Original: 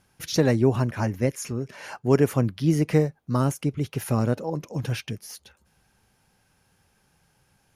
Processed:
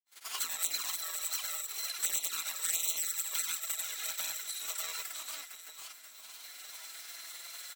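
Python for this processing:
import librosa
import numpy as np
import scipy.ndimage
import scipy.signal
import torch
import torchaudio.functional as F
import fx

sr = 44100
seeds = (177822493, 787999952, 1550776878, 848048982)

y = fx.bit_reversed(x, sr, seeds[0], block=256)
y = fx.recorder_agc(y, sr, target_db=-15.5, rise_db_per_s=17.0, max_gain_db=30)
y = fx.high_shelf(y, sr, hz=9300.0, db=-11.5)
y = fx.formant_shift(y, sr, semitones=3)
y = scipy.signal.sosfilt(scipy.signal.butter(2, 1000.0, 'highpass', fs=sr, output='sos'), y)
y = fx.echo_feedback(y, sr, ms=494, feedback_pct=48, wet_db=-4.5)
y = fx.granulator(y, sr, seeds[1], grain_ms=100.0, per_s=20.0, spray_ms=100.0, spread_st=0)
y = fx.formant_shift(y, sr, semitones=3)
y = fx.env_flanger(y, sr, rest_ms=11.8, full_db=-25.0)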